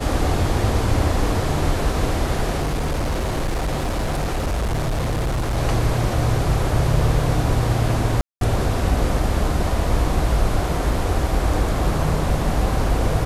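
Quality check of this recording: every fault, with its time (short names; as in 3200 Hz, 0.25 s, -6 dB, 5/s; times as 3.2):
2.61–5.58 clipped -18.5 dBFS
8.21–8.41 gap 0.202 s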